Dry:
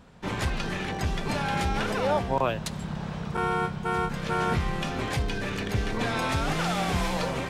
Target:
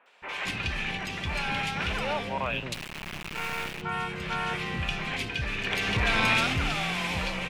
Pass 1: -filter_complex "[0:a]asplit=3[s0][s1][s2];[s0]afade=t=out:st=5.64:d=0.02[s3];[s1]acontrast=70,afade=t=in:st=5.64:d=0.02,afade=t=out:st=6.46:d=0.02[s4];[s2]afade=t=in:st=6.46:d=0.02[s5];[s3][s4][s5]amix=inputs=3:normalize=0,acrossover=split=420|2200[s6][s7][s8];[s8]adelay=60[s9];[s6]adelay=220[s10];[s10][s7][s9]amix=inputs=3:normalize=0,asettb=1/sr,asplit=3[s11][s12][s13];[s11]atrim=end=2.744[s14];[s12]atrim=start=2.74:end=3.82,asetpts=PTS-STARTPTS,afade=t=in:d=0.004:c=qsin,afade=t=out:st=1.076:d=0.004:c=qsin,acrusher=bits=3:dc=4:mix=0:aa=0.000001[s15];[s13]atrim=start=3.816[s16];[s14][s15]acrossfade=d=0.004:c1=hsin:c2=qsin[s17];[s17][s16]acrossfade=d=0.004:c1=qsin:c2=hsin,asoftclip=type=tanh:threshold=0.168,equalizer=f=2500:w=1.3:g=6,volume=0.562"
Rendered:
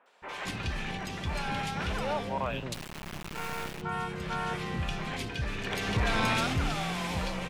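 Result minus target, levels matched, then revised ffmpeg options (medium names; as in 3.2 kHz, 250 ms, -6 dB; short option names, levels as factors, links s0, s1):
2 kHz band -2.5 dB
-filter_complex "[0:a]asplit=3[s0][s1][s2];[s0]afade=t=out:st=5.64:d=0.02[s3];[s1]acontrast=70,afade=t=in:st=5.64:d=0.02,afade=t=out:st=6.46:d=0.02[s4];[s2]afade=t=in:st=6.46:d=0.02[s5];[s3][s4][s5]amix=inputs=3:normalize=0,acrossover=split=420|2200[s6][s7][s8];[s8]adelay=60[s9];[s6]adelay=220[s10];[s10][s7][s9]amix=inputs=3:normalize=0,asettb=1/sr,asplit=3[s11][s12][s13];[s11]atrim=end=2.744[s14];[s12]atrim=start=2.74:end=3.82,asetpts=PTS-STARTPTS,afade=t=in:d=0.004:c=qsin,afade=t=out:st=1.076:d=0.004:c=qsin,acrusher=bits=3:dc=4:mix=0:aa=0.000001[s15];[s13]atrim=start=3.816[s16];[s14][s15]acrossfade=d=0.004:c1=hsin:c2=qsin[s17];[s17][s16]acrossfade=d=0.004:c1=qsin:c2=hsin,asoftclip=type=tanh:threshold=0.168,equalizer=f=2500:w=1.3:g=15,volume=0.562"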